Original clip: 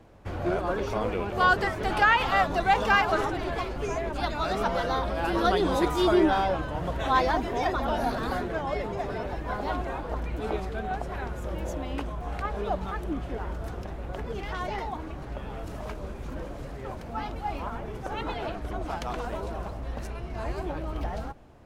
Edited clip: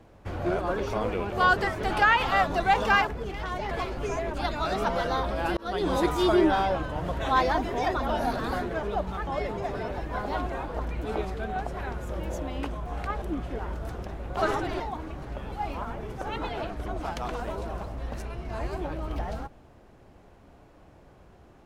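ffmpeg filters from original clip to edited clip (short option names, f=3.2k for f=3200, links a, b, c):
-filter_complex "[0:a]asplit=10[a][b][c][d][e][f][g][h][i][j];[a]atrim=end=3.072[k];[b]atrim=start=14.158:end=14.802[l];[c]atrim=start=3.498:end=5.36,asetpts=PTS-STARTPTS,afade=t=out:st=1.858:d=0.004:c=hsin[m];[d]atrim=start=5.36:end=8.622,asetpts=PTS-STARTPTS,afade=t=in:d=0.35[n];[e]atrim=start=12.568:end=13.012[o];[f]atrim=start=8.618:end=12.572[p];[g]atrim=start=13.008:end=14.162[q];[h]atrim=start=3.068:end=3.502[r];[i]atrim=start=14.798:end=15.522[s];[j]atrim=start=17.368[t];[k][l]acrossfade=d=0.004:c1=hsin:c2=hsin[u];[m][n]concat=n=2:v=0:a=1[v];[u][v]acrossfade=d=0.004:c1=hsin:c2=hsin[w];[w][o]acrossfade=d=0.004:c1=hsin:c2=hsin[x];[x][p]acrossfade=d=0.004:c1=hsin:c2=hsin[y];[y][q]acrossfade=d=0.004:c1=hsin:c2=hsin[z];[z][r]acrossfade=d=0.004:c1=hsin:c2=hsin[aa];[aa][s]acrossfade=d=0.004:c1=hsin:c2=hsin[ab];[ab][t]acrossfade=d=0.004:c1=hsin:c2=hsin"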